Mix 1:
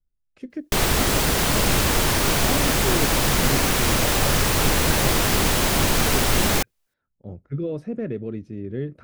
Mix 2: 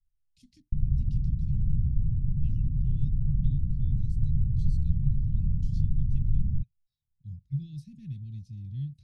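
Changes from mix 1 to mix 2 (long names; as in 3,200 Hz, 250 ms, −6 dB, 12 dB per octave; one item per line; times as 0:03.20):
background: add Butterworth low-pass 590 Hz 36 dB per octave
master: add elliptic band-stop filter 140–4,000 Hz, stop band 60 dB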